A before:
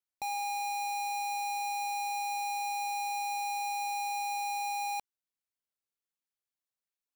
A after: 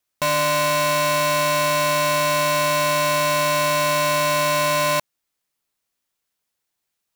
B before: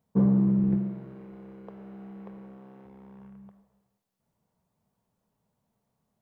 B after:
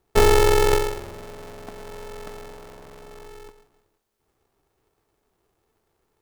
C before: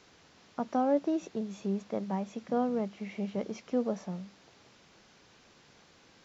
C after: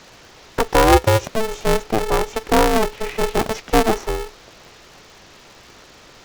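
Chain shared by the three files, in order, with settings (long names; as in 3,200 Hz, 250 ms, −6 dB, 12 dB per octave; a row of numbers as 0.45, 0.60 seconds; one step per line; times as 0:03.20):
ring modulator with a square carrier 220 Hz
loudness normalisation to −19 LKFS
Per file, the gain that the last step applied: +14.5, +6.5, +14.5 decibels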